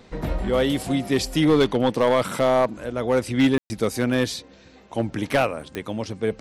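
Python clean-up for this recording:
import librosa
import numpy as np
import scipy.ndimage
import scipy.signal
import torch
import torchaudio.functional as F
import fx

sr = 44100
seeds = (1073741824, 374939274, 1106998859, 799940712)

y = fx.fix_declip(x, sr, threshold_db=-12.0)
y = fx.fix_declick_ar(y, sr, threshold=10.0)
y = fx.fix_ambience(y, sr, seeds[0], print_start_s=4.41, print_end_s=4.91, start_s=3.58, end_s=3.7)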